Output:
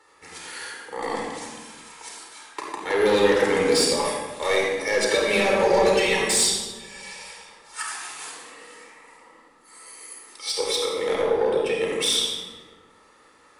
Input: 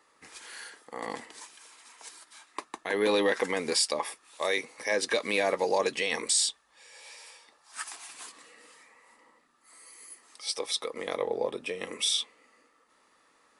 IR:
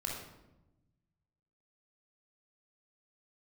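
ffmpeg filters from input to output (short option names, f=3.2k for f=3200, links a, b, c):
-filter_complex "[0:a]asettb=1/sr,asplit=3[a][b][c];[a]atrim=end=5.084[d];[b]atrim=start=5.08:end=7.13,asetpts=PTS-STARTPTS,afade=t=in:d=0.004:c=qsin,afade=t=out:st=2.046:d=0.004:c=qsin,aecho=1:1:5.2:0.69,atrim=end_sample=90405[e];[c]atrim=start=7.126[f];[d][e]acrossfade=d=0.004:c1=hsin:c2=qsin[g];[g][f]acrossfade=d=0.004:c1=qsin:c2=hsin,asoftclip=type=tanh:threshold=-23.5dB[h];[1:a]atrim=start_sample=2205,asetrate=28665,aresample=44100[i];[h][i]afir=irnorm=-1:irlink=0,volume=5dB"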